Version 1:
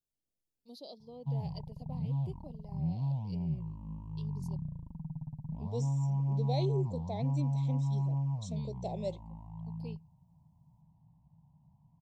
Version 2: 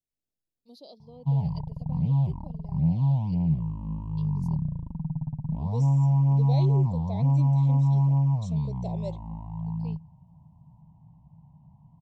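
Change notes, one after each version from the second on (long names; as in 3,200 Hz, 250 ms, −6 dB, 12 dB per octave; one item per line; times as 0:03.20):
background +10.0 dB
master: add high-shelf EQ 6,100 Hz −3.5 dB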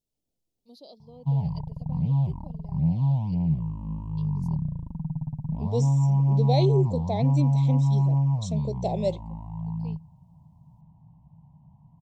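second voice +10.5 dB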